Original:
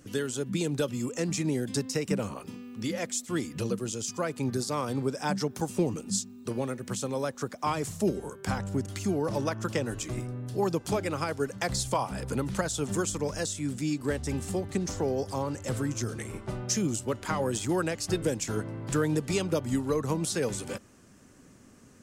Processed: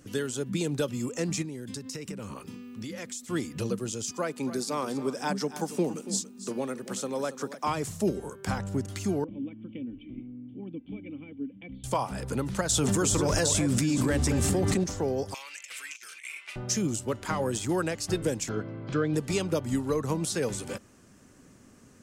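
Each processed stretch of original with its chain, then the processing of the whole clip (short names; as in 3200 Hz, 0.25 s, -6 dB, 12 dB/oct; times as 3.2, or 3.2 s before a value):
1.42–3.26 bell 680 Hz -7.5 dB 0.6 oct + compressor 12:1, threshold -33 dBFS
4.11–7.68 HPF 170 Hz 24 dB/oct + echo 0.282 s -13.5 dB
9.24–11.84 vocal tract filter i + comb 3.9 ms, depth 40%
12.69–14.84 notch 430 Hz, Q 14 + echo with dull and thin repeats by turns 0.221 s, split 1500 Hz, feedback 51%, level -8 dB + fast leveller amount 100%
15.34–16.56 resonant high-pass 2400 Hz, resonance Q 5.4 + negative-ratio compressor -41 dBFS, ratio -0.5
18.49–19.14 LPF 4700 Hz 24 dB/oct + notch comb 920 Hz
whole clip: dry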